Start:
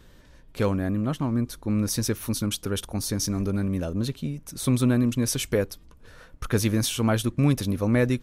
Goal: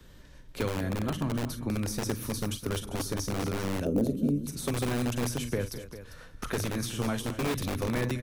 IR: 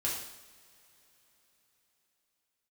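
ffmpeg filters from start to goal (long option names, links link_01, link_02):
-filter_complex "[0:a]acrossover=split=96|1400[link_01][link_02][link_03];[link_01]acompressor=threshold=-37dB:ratio=4[link_04];[link_02]acompressor=threshold=-28dB:ratio=4[link_05];[link_03]acompressor=threshold=-38dB:ratio=4[link_06];[link_04][link_05][link_06]amix=inputs=3:normalize=0,equalizer=frequency=810:width_type=o:width=2.7:gain=-2,aecho=1:1:41|42|49|207|240|398:0.224|0.15|0.178|0.2|0.168|0.2,acrossover=split=180|1300|5100[link_07][link_08][link_09][link_10];[link_07]aeval=exprs='(mod(25.1*val(0)+1,2)-1)/25.1':channel_layout=same[link_11];[link_11][link_08][link_09][link_10]amix=inputs=4:normalize=0,asettb=1/sr,asplit=3[link_12][link_13][link_14];[link_12]atrim=end=3.854[link_15];[link_13]atrim=start=3.85:end=4.46,asetpts=PTS-STARTPTS,afade=type=in:duration=0.004:curve=qsin,afade=type=out:start_time=0.606:duration=0.004:curve=qsin,equalizer=frequency=125:width_type=o:width=1:gain=-5,equalizer=frequency=250:width_type=o:width=1:gain=9,equalizer=frequency=500:width_type=o:width=1:gain=8,equalizer=frequency=1000:width_type=o:width=1:gain=-8,equalizer=frequency=2000:width_type=o:width=1:gain=-11,equalizer=frequency=4000:width_type=o:width=1:gain=-11,equalizer=frequency=8000:width_type=o:width=1:gain=-4[link_16];[link_14]atrim=start=4.456[link_17];[link_15][link_16]acrossfade=duration=0.004:curve1=hsin:curve2=qsin[link_18];[link_18][link_17]acrossfade=duration=0.004:curve1=qsin:curve2=hsin"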